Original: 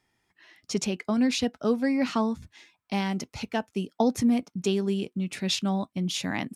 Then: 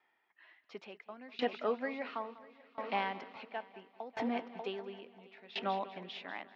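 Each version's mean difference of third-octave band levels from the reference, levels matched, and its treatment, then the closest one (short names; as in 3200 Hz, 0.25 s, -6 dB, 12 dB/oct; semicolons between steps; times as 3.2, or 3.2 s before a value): 9.5 dB: BPF 650–4300 Hz; air absorption 380 m; multi-head echo 0.197 s, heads first and third, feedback 67%, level -14.5 dB; dB-ramp tremolo decaying 0.72 Hz, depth 22 dB; gain +5.5 dB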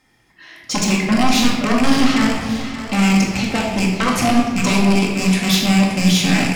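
12.5 dB: rattling part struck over -38 dBFS, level -17 dBFS; sine folder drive 12 dB, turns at -11.5 dBFS; split-band echo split 390 Hz, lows 0.281 s, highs 0.576 s, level -12 dB; shoebox room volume 750 m³, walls mixed, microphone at 2.1 m; gain -5.5 dB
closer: first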